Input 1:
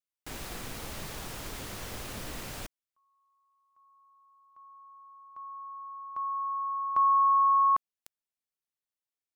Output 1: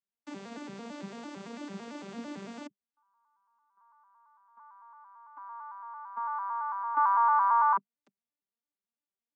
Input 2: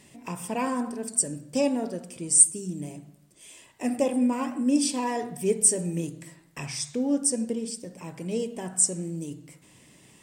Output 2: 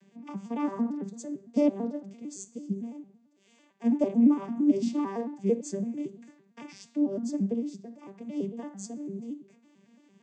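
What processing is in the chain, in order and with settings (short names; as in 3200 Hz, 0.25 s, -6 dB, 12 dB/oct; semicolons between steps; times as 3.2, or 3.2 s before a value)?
arpeggiated vocoder minor triad, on G3, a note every 0.112 s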